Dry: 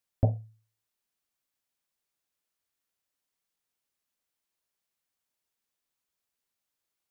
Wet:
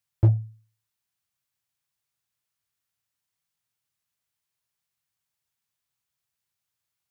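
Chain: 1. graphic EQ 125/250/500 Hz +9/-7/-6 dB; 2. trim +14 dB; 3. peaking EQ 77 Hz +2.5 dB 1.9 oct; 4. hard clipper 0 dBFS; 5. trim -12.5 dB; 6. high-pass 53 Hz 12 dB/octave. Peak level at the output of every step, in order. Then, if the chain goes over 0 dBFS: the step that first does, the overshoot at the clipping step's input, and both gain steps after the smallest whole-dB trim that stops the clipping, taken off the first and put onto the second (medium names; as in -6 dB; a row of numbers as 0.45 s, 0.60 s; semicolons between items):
-9.5 dBFS, +4.5 dBFS, +6.5 dBFS, 0.0 dBFS, -12.5 dBFS, -8.5 dBFS; step 2, 6.5 dB; step 2 +7 dB, step 5 -5.5 dB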